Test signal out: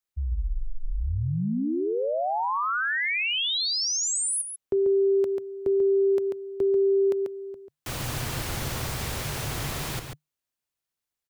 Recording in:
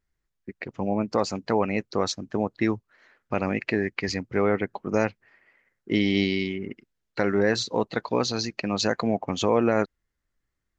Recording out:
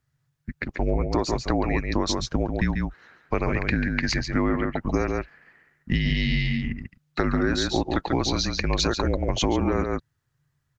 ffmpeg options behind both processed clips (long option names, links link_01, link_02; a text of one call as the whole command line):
ffmpeg -i in.wav -filter_complex "[0:a]afreqshift=-150,asplit=2[link_01][link_02];[link_02]adelay=139.9,volume=-6dB,highshelf=frequency=4000:gain=-3.15[link_03];[link_01][link_03]amix=inputs=2:normalize=0,acompressor=threshold=-24dB:ratio=6,volume=5dB" out.wav